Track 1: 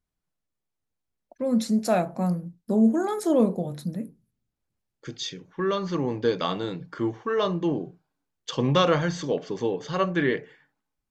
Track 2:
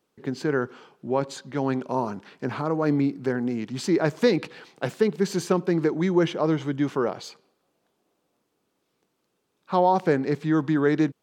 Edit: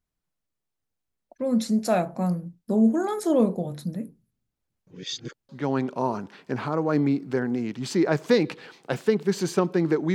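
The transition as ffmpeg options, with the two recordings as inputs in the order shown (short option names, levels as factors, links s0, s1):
-filter_complex "[0:a]apad=whole_dur=10.14,atrim=end=10.14,asplit=2[s0][s1];[s0]atrim=end=4.872[s2];[s1]atrim=start=4.868:end=5.492,asetpts=PTS-STARTPTS,areverse[s3];[1:a]atrim=start=1.418:end=6.07[s4];[s2][s3]acrossfade=d=0.004:c1=hsin:c2=hsin[s5];[s5][s4]acrossfade=d=0.004:c1=hsin:c2=hsin"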